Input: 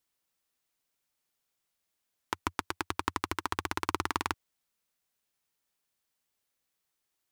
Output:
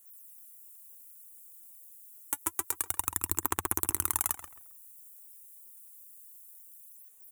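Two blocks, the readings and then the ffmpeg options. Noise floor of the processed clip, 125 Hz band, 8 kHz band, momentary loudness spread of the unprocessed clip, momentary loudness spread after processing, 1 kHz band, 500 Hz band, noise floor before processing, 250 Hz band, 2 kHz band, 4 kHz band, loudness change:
-55 dBFS, -1.0 dB, +14.5 dB, 4 LU, 20 LU, -5.0 dB, -4.0 dB, -83 dBFS, -4.0 dB, -6.0 dB, -6.5 dB, +4.5 dB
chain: -filter_complex "[0:a]alimiter=limit=-19.5dB:level=0:latency=1:release=125,aphaser=in_gain=1:out_gain=1:delay=4.5:decay=0.68:speed=0.28:type=sinusoidal,aexciter=amount=14.3:drive=8.1:freq=7.3k,asplit=2[a][b];[b]adelay=134,lowpass=f=3.4k:p=1,volume=-8.5dB,asplit=2[c][d];[d]adelay=134,lowpass=f=3.4k:p=1,volume=0.27,asplit=2[e][f];[f]adelay=134,lowpass=f=3.4k:p=1,volume=0.27[g];[a][c][e][g]amix=inputs=4:normalize=0"

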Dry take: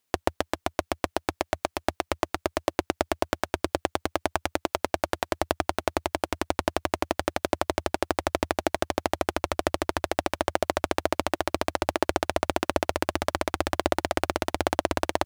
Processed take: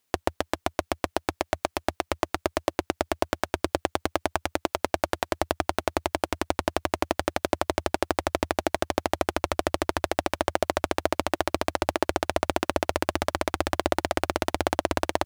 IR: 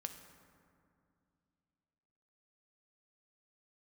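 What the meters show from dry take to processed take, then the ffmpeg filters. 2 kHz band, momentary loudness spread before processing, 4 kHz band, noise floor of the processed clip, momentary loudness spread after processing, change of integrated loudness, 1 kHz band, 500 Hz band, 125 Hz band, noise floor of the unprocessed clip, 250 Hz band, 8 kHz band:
+0.5 dB, 4 LU, +0.5 dB, -75 dBFS, 3 LU, +0.5 dB, +0.5 dB, +0.5 dB, +0.5 dB, -77 dBFS, +0.5 dB, +0.5 dB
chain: -af "alimiter=limit=-7.5dB:level=0:latency=1,volume=2.5dB"

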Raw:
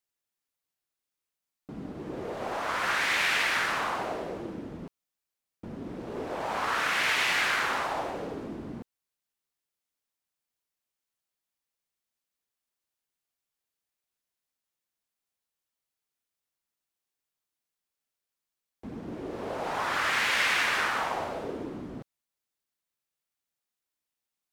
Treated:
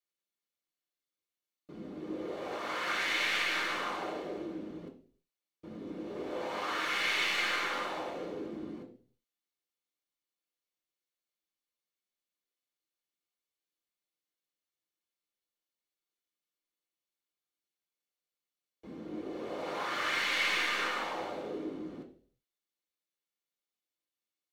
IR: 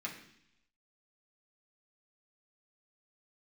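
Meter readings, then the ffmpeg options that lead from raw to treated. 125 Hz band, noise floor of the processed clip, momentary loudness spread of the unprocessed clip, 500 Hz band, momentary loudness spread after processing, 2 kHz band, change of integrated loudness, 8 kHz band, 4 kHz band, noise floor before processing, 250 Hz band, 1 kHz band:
-8.5 dB, under -85 dBFS, 19 LU, -3.5 dB, 17 LU, -5.5 dB, -5.0 dB, -6.5 dB, -3.0 dB, under -85 dBFS, -2.0 dB, -6.5 dB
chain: -filter_complex "[0:a]aeval=exprs='clip(val(0),-1,0.075)':c=same[a];[1:a]atrim=start_sample=2205,asetrate=74970,aresample=44100[b];[a][b]afir=irnorm=-1:irlink=0"

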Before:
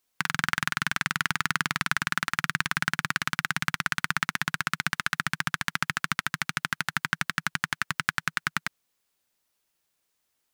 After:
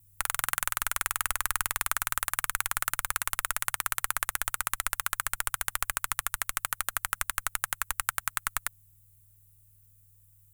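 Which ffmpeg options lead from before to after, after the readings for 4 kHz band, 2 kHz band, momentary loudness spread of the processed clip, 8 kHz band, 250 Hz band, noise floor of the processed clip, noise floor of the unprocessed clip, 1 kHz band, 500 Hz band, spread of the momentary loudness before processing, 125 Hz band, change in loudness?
-6.0 dB, -6.5 dB, 3 LU, +7.0 dB, -20.0 dB, -61 dBFS, -77 dBFS, -2.5 dB, 0.0 dB, 3 LU, -11.5 dB, -1.5 dB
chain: -af "aexciter=amount=5.9:drive=7.7:freq=7.5k,aeval=exprs='val(0)+0.00141*(sin(2*PI*60*n/s)+sin(2*PI*2*60*n/s)/2+sin(2*PI*3*60*n/s)/3+sin(2*PI*4*60*n/s)/4+sin(2*PI*5*60*n/s)/5)':c=same,afreqshift=-160,volume=-5dB"

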